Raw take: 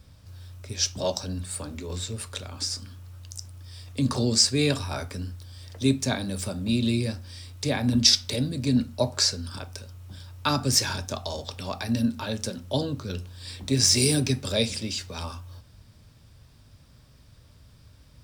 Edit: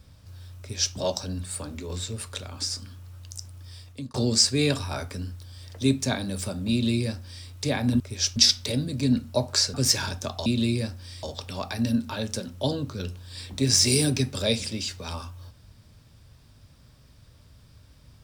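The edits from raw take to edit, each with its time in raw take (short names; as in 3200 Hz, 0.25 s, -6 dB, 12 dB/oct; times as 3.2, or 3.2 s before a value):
0.59–0.95 copy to 8
3.72–4.14 fade out
6.71–7.48 copy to 11.33
9.38–10.61 cut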